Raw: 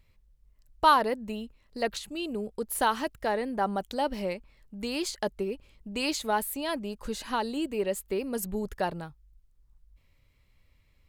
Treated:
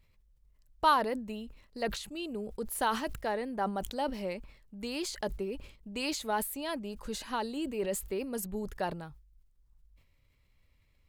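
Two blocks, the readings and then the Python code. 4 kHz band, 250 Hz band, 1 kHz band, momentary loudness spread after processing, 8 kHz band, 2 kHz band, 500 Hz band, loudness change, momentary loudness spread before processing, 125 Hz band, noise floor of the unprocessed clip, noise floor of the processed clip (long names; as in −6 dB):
−4.0 dB, −3.5 dB, −4.5 dB, 12 LU, −2.5 dB, −4.0 dB, −4.0 dB, −4.0 dB, 12 LU, −2.5 dB, −65 dBFS, −68 dBFS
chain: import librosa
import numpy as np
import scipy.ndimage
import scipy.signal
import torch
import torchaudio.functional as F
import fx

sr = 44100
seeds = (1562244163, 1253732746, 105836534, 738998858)

y = fx.sustainer(x, sr, db_per_s=92.0)
y = y * librosa.db_to_amplitude(-4.5)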